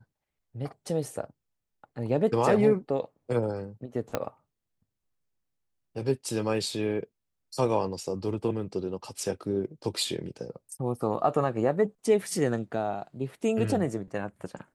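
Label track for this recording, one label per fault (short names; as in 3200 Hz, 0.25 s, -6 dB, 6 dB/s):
4.150000	4.150000	pop -13 dBFS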